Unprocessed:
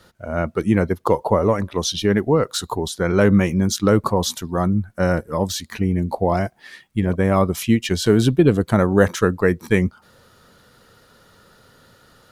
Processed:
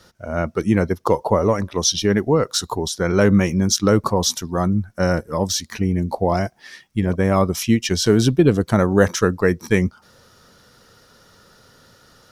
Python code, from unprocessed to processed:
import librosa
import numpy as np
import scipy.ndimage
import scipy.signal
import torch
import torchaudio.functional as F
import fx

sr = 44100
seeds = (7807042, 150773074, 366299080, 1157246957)

y = fx.peak_eq(x, sr, hz=5600.0, db=9.5, octaves=0.37)